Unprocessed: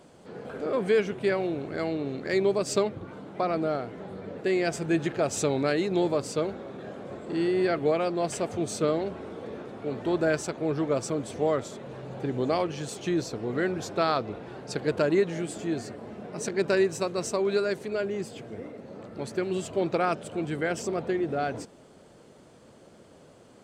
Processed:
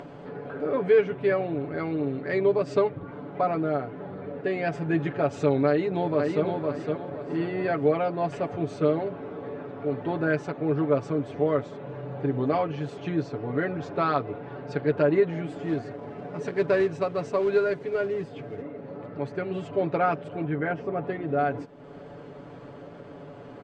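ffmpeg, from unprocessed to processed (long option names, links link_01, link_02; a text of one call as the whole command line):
ffmpeg -i in.wav -filter_complex "[0:a]asplit=2[link_01][link_02];[link_02]afade=type=in:start_time=5.68:duration=0.01,afade=type=out:start_time=6.45:duration=0.01,aecho=0:1:510|1020|1530|2040:0.668344|0.200503|0.060151|0.0180453[link_03];[link_01][link_03]amix=inputs=2:normalize=0,asettb=1/sr,asplit=3[link_04][link_05][link_06];[link_04]atrim=end=15.464[link_07];[link_05]atrim=start=15.46:end=18.62,asetpts=PTS-STARTPTS,afade=type=in:duration=0.004:curve=qsin,afade=type=out:start_time=3.156:duration=0.004:curve=qsin,acrusher=bits=4:mode=log:mix=0:aa=0.000001[link_08];[link_06]atrim=start=18.616[link_09];[link_07][link_08]acrossfade=duration=0.004:curve1=hsin:curve2=qsin[link_10];[link_10][link_09]acrossfade=duration=0.004:curve1=qsin:curve2=hsin,asettb=1/sr,asplit=3[link_11][link_12][link_13];[link_11]atrim=end=20.444[link_14];[link_12]atrim=start=20.44:end=21.04,asetpts=PTS-STARTPTS,afade=type=in:duration=0.004:curve=qsin,afade=type=out:start_time=0.596:duration=0.004:curve=qsin,lowpass=2600[link_15];[link_13]atrim=start=21.036[link_16];[link_14][link_15]acrossfade=duration=0.004:curve1=hsin:curve2=qsin[link_17];[link_17][link_16]acrossfade=duration=0.004:curve1=qsin:curve2=hsin,lowpass=2200,aecho=1:1:7:0.72,acompressor=mode=upward:threshold=-33dB:ratio=2.5" out.wav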